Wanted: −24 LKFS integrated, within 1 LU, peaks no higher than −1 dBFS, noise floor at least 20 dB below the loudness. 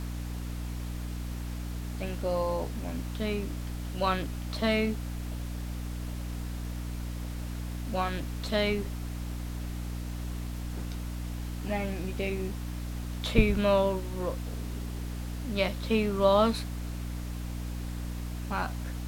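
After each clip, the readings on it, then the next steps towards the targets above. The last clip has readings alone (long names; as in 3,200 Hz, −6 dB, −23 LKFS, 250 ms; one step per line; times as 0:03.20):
mains hum 60 Hz; hum harmonics up to 300 Hz; level of the hum −33 dBFS; background noise floor −36 dBFS; target noise floor −53 dBFS; integrated loudness −32.5 LKFS; sample peak −7.0 dBFS; target loudness −24.0 LKFS
→ hum removal 60 Hz, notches 5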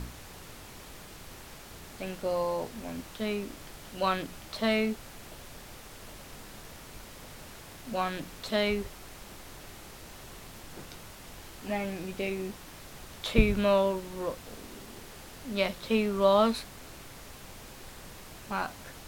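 mains hum none found; background noise floor −48 dBFS; target noise floor −51 dBFS
→ noise reduction from a noise print 6 dB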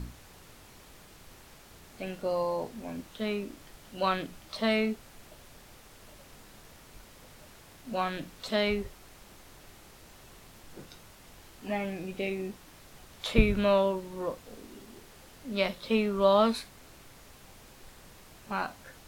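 background noise floor −54 dBFS; integrated loudness −30.5 LKFS; sample peak −8.0 dBFS; target loudness −24.0 LKFS
→ level +6.5 dB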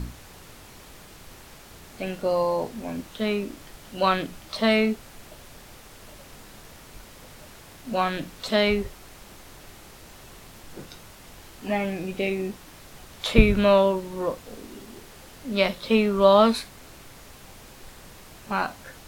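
integrated loudness −24.0 LKFS; sample peak −1.5 dBFS; background noise floor −47 dBFS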